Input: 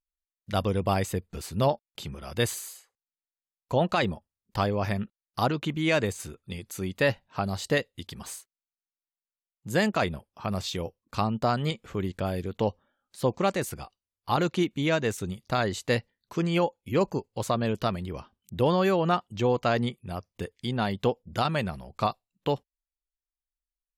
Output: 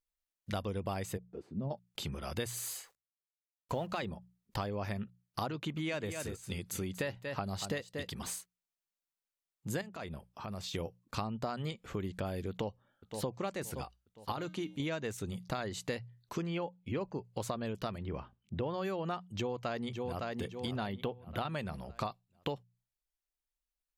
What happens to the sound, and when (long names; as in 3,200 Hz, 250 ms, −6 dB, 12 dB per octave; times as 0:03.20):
0:01.16–0:01.70: resonant band-pass 680 Hz → 160 Hz, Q 2.1
0:02.54–0:04.01: mu-law and A-law mismatch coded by mu
0:05.53–0:08.28: single-tap delay 236 ms −12 dB
0:09.81–0:10.74: downward compressor 3 to 1, threshold −41 dBFS
0:12.50–0:13.29: delay throw 520 ms, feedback 45%, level −16 dB
0:14.32–0:14.80: tuned comb filter 310 Hz, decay 0.31 s
0:16.46–0:17.25: low-pass filter 4,000 Hz
0:17.98–0:18.74: low-pass filter 2,700 Hz
0:19.34–0:20.30: delay throw 560 ms, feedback 35%, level −9 dB
0:20.87–0:21.49: flat-topped bell 6,600 Hz −14.5 dB 1.2 octaves
whole clip: mains-hum notches 60/120/180 Hz; downward compressor 6 to 1, threshold −34 dBFS